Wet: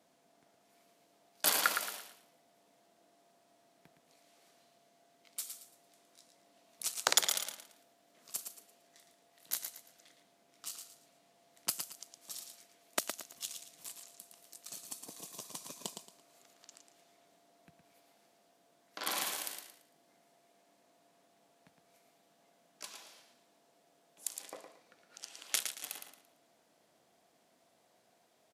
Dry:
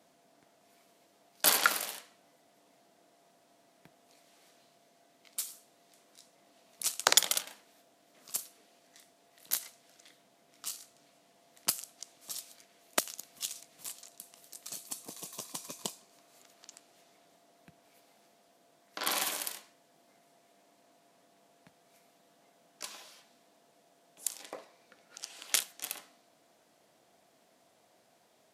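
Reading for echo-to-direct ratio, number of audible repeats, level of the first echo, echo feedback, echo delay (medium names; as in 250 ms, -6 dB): -6.5 dB, 3, -7.0 dB, 29%, 113 ms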